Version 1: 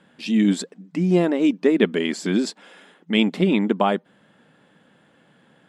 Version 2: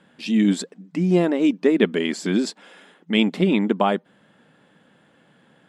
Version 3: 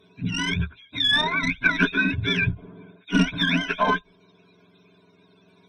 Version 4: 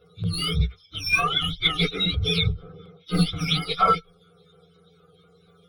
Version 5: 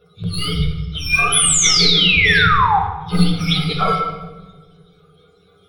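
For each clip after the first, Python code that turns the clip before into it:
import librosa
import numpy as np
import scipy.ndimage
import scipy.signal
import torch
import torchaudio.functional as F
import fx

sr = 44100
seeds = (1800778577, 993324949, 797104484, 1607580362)

y1 = x
y2 = fx.octave_mirror(y1, sr, pivot_hz=790.0)
y2 = fx.tube_stage(y2, sr, drive_db=12.0, bias=0.4)
y2 = fx.ripple_eq(y2, sr, per_octave=1.6, db=16)
y3 = fx.partial_stretch(y2, sr, pct=118)
y3 = fx.filter_lfo_notch(y3, sr, shape='saw_down', hz=4.2, low_hz=500.0, high_hz=7400.0, q=1.0)
y3 = fx.fixed_phaser(y3, sr, hz=1300.0, stages=8)
y3 = y3 * librosa.db_to_amplitude(8.5)
y4 = fx.spec_paint(y3, sr, seeds[0], shape='fall', start_s=1.32, length_s=1.47, low_hz=750.0, high_hz=11000.0, level_db=-19.0)
y4 = fx.room_shoebox(y4, sr, seeds[1], volume_m3=800.0, walls='mixed', distance_m=1.3)
y4 = y4 * librosa.db_to_amplitude(2.5)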